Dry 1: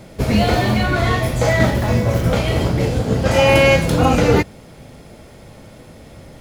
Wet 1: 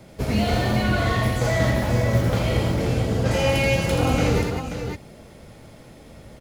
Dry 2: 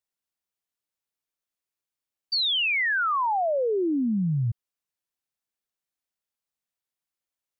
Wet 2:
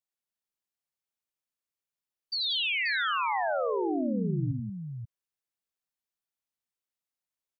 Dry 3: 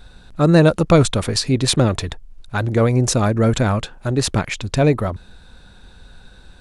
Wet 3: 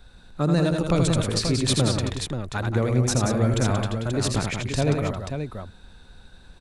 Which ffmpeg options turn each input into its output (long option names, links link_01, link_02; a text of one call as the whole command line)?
ffmpeg -i in.wav -filter_complex "[0:a]acrossover=split=200|3000[link_01][link_02][link_03];[link_02]acompressor=threshold=-16dB:ratio=6[link_04];[link_01][link_04][link_03]amix=inputs=3:normalize=0,asplit=2[link_05][link_06];[link_06]aecho=0:1:81|181|533:0.562|0.447|0.447[link_07];[link_05][link_07]amix=inputs=2:normalize=0,volume=-6.5dB" out.wav